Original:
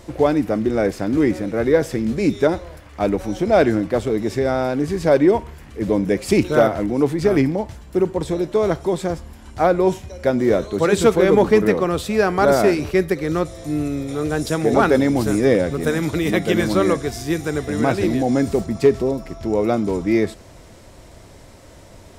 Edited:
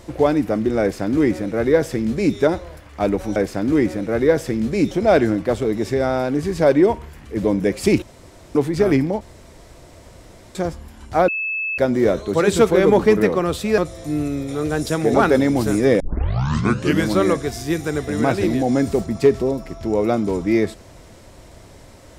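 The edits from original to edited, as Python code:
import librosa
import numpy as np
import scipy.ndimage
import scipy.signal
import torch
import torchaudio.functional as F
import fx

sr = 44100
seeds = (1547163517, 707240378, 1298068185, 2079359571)

y = fx.edit(x, sr, fx.duplicate(start_s=0.81, length_s=1.55, to_s=3.36),
    fx.room_tone_fill(start_s=6.47, length_s=0.53),
    fx.room_tone_fill(start_s=7.66, length_s=1.34),
    fx.bleep(start_s=9.73, length_s=0.5, hz=2610.0, db=-21.0),
    fx.cut(start_s=12.23, length_s=1.15),
    fx.tape_start(start_s=15.6, length_s=1.07), tone=tone)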